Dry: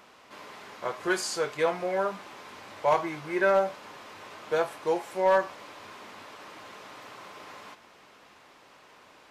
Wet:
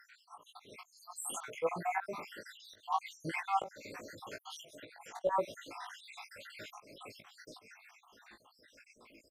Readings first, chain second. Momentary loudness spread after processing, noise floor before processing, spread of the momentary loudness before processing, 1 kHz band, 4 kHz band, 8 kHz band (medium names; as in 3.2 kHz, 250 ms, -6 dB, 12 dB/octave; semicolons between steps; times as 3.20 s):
20 LU, -56 dBFS, 21 LU, -7.0 dB, -8.5 dB, -5.0 dB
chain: random holes in the spectrogram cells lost 75%; spectral noise reduction 8 dB; treble shelf 6.4 kHz +2 dB; slow attack 234 ms; doubling 18 ms -4.5 dB; trim +3 dB